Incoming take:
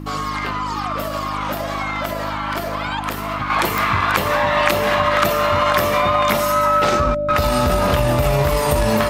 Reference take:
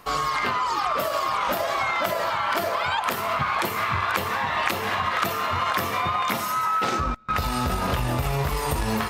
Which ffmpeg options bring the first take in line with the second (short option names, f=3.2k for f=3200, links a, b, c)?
-af "adeclick=t=4,bandreject=f=51.2:t=h:w=4,bandreject=f=102.4:t=h:w=4,bandreject=f=153.6:t=h:w=4,bandreject=f=204.8:t=h:w=4,bandreject=f=256:t=h:w=4,bandreject=f=307.2:t=h:w=4,bandreject=f=590:w=30,asetnsamples=n=441:p=0,asendcmd='3.5 volume volume -6.5dB',volume=0dB"